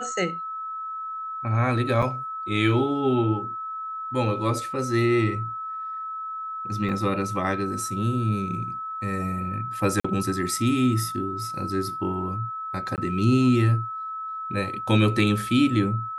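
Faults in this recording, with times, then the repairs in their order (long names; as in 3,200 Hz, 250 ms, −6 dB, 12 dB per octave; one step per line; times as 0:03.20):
whistle 1,300 Hz −30 dBFS
0:02.02–0:02.03: drop-out 5.5 ms
0:06.89: drop-out 2.2 ms
0:10.00–0:10.04: drop-out 45 ms
0:12.96–0:12.98: drop-out 18 ms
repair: notch filter 1,300 Hz, Q 30
repair the gap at 0:02.02, 5.5 ms
repair the gap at 0:06.89, 2.2 ms
repair the gap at 0:10.00, 45 ms
repair the gap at 0:12.96, 18 ms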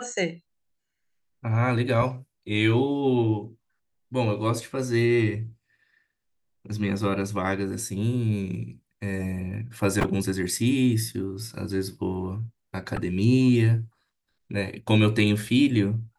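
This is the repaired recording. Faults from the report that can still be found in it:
none of them is left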